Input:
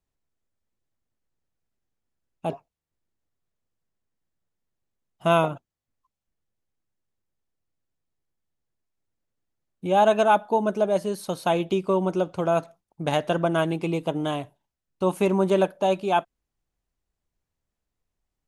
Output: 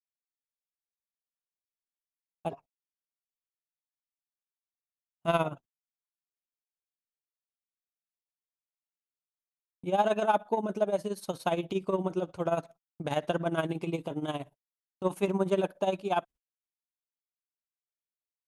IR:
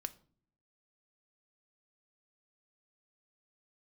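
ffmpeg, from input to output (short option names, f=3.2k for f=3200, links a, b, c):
-af "acontrast=32,tremolo=f=17:d=0.75,agate=range=-37dB:threshold=-41dB:ratio=16:detection=peak,volume=-8.5dB"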